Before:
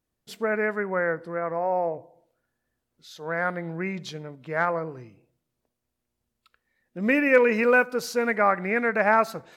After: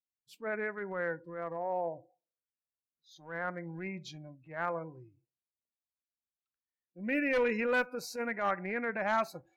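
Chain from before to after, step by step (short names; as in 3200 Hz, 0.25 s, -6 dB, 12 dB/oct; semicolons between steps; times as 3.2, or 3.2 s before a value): one-sided clip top -17.5 dBFS, bottom -10 dBFS; spectral noise reduction 22 dB; transient shaper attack -8 dB, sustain -1 dB; gain -8 dB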